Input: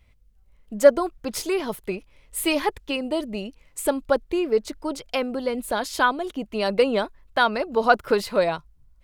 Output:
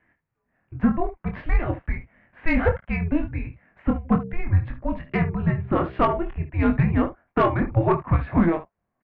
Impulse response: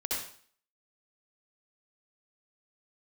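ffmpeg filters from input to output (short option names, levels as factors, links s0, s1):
-filter_complex "[0:a]asplit=3[s0][s1][s2];[s0]afade=t=out:st=4.04:d=0.02[s3];[s1]bandreject=f=66.42:t=h:w=4,bandreject=f=132.84:t=h:w=4,bandreject=f=199.26:t=h:w=4,bandreject=f=265.68:t=h:w=4,bandreject=f=332.1:t=h:w=4,bandreject=f=398.52:t=h:w=4,bandreject=f=464.94:t=h:w=4,bandreject=f=531.36:t=h:w=4,bandreject=f=597.78:t=h:w=4,bandreject=f=664.2:t=h:w=4,bandreject=f=730.62:t=h:w=4,bandreject=f=797.04:t=h:w=4,bandreject=f=863.46:t=h:w=4,bandreject=f=929.88:t=h:w=4,bandreject=f=996.3:t=h:w=4,afade=t=in:st=4.04:d=0.02,afade=t=out:st=6.21:d=0.02[s4];[s2]afade=t=in:st=6.21:d=0.02[s5];[s3][s4][s5]amix=inputs=3:normalize=0,alimiter=limit=0.266:level=0:latency=1:release=309,highpass=f=280:t=q:w=0.5412,highpass=f=280:t=q:w=1.307,lowpass=f=2400:t=q:w=0.5176,lowpass=f=2400:t=q:w=0.7071,lowpass=f=2400:t=q:w=1.932,afreqshift=-340,asplit=2[s6][s7];[s7]aecho=0:1:24|57|72:0.562|0.126|0.2[s8];[s6][s8]amix=inputs=2:normalize=0,aeval=exprs='(tanh(5.01*val(0)+0.25)-tanh(0.25))/5.01':c=same,volume=1.78"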